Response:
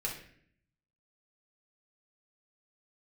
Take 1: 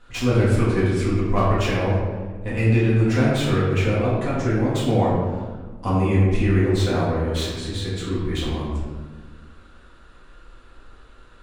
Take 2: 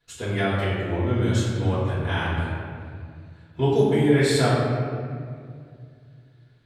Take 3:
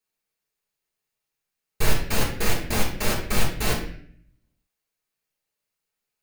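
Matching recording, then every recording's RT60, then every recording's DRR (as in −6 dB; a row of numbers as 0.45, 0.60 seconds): 3; 1.5, 2.2, 0.60 seconds; −8.5, −12.0, −3.5 decibels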